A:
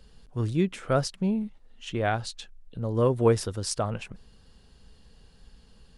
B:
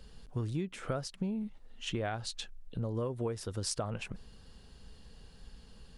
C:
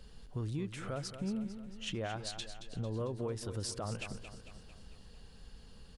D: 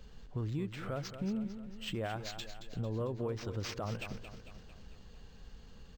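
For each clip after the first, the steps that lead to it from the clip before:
compressor 16:1, threshold -32 dBFS, peak gain reduction 17.5 dB; gain +1 dB
limiter -28 dBFS, peak gain reduction 10 dB; on a send: feedback echo 0.224 s, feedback 53%, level -10.5 dB; on the sum: gain -1 dB
decimation joined by straight lines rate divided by 4×; gain +1 dB

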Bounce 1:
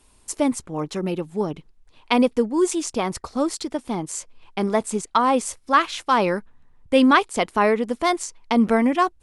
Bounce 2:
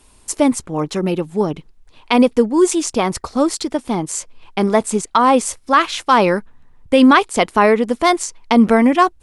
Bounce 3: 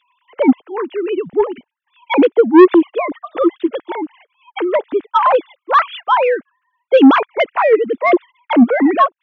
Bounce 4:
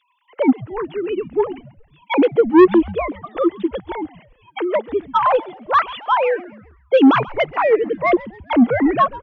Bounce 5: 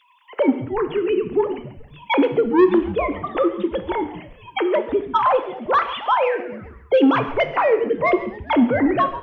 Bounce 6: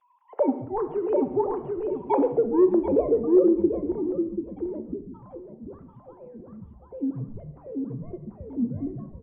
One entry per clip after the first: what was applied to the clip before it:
maximiser +7.5 dB; gain -1 dB
sine-wave speech; soft clip -5.5 dBFS, distortion -9 dB; gain +4.5 dB
frequency-shifting echo 0.135 s, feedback 49%, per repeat -140 Hz, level -19 dB; gain -3.5 dB
compressor 2:1, threshold -33 dBFS, peak gain reduction 14 dB; non-linear reverb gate 0.26 s falling, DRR 8.5 dB; gain +8.5 dB
feedback echo 0.738 s, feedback 26%, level -3 dB; low-pass sweep 800 Hz -> 170 Hz, 2.06–5.46; gain -8 dB

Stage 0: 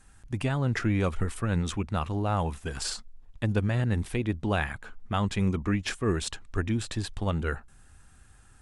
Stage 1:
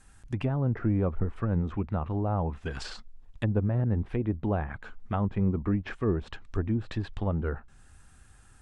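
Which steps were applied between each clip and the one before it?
treble ducked by the level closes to 850 Hz, closed at -24 dBFS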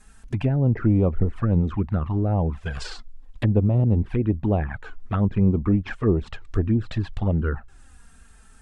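envelope flanger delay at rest 5 ms, full sweep at -22.5 dBFS; gain +7.5 dB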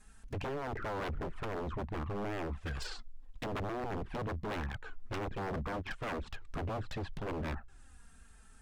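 wavefolder -25 dBFS; gain -7 dB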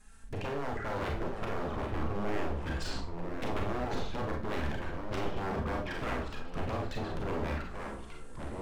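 Schroeder reverb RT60 0.32 s, combs from 28 ms, DRR 1 dB; echoes that change speed 0.578 s, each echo -3 st, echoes 3, each echo -6 dB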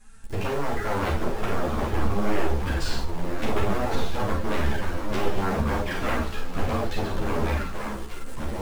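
in parallel at -6 dB: bit-crush 7-bit; on the sum: ensemble effect; gain +7.5 dB

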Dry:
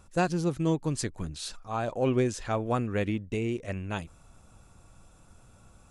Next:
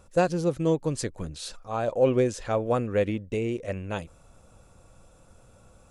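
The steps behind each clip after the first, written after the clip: bell 520 Hz +9 dB 0.5 oct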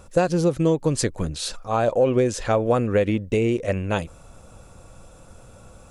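compressor 5:1, threshold -24 dBFS, peak gain reduction 8.5 dB; gain +8.5 dB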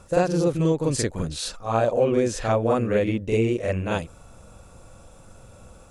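reverse echo 44 ms -4 dB; gain -2.5 dB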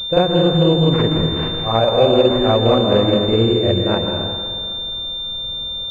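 plate-style reverb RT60 2.2 s, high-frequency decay 0.75×, pre-delay 0.11 s, DRR 2.5 dB; pulse-width modulation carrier 3600 Hz; gain +5.5 dB

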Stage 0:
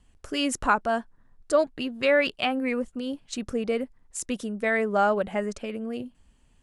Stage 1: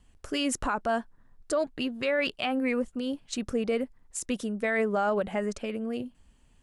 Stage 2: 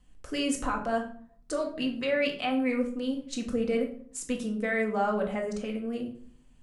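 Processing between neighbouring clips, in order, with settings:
limiter -18.5 dBFS, peak gain reduction 10 dB
shoebox room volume 640 m³, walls furnished, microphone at 2 m; gain -4 dB

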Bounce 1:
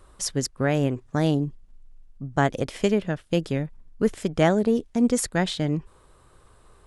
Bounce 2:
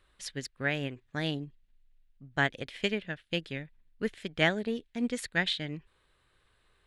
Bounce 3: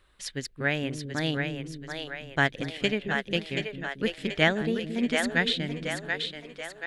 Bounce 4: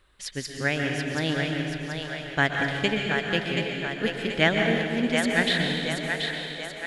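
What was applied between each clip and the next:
band shelf 2600 Hz +12.5 dB; upward expander 1.5:1, over -29 dBFS; gain -8.5 dB
split-band echo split 380 Hz, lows 0.223 s, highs 0.731 s, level -5 dB; gain +3.5 dB
plate-style reverb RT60 2.2 s, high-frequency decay 0.85×, pre-delay 0.11 s, DRR 2 dB; gain +1 dB

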